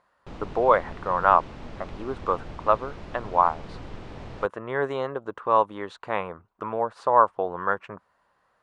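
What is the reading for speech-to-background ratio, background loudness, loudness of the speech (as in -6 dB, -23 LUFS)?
17.0 dB, -42.0 LUFS, -25.0 LUFS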